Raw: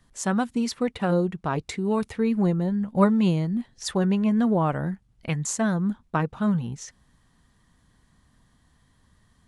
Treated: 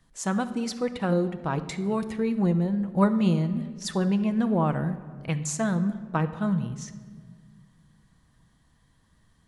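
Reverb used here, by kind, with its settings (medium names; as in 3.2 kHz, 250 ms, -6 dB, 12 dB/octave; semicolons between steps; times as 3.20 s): simulated room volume 2100 m³, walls mixed, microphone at 0.64 m; trim -2.5 dB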